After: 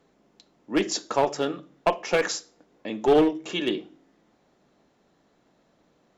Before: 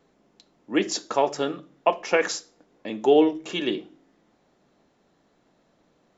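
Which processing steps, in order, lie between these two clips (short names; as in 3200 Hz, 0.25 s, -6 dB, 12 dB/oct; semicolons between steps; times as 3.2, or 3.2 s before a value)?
one-sided clip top -17.5 dBFS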